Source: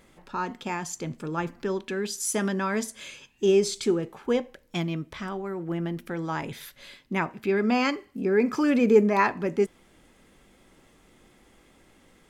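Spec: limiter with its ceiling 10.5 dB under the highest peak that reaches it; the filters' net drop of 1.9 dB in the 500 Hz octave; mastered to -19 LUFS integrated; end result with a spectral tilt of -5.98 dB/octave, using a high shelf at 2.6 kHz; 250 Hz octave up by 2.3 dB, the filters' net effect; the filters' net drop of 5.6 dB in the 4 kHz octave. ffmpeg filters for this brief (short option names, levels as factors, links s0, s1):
-af "equalizer=f=250:t=o:g=4,equalizer=f=500:t=o:g=-4,highshelf=f=2600:g=-4.5,equalizer=f=4000:t=o:g=-3.5,volume=3.55,alimiter=limit=0.398:level=0:latency=1"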